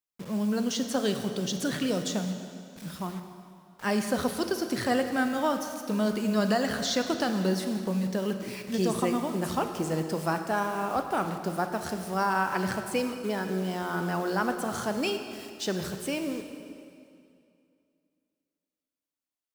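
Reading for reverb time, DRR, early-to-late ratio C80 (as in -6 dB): 2.4 s, 6.5 dB, 8.0 dB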